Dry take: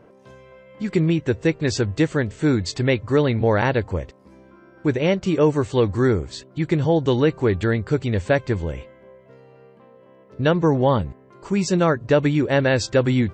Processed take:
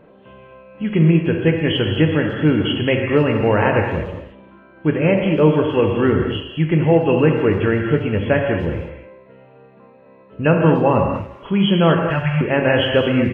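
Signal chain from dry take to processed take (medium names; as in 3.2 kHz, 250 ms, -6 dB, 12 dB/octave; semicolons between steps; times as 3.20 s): knee-point frequency compression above 2.5 kHz 4:1; 11.97–12.41 s: elliptic band-stop 160–720 Hz; speakerphone echo 290 ms, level -19 dB; gated-style reverb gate 260 ms flat, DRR 1.5 dB; trim +1.5 dB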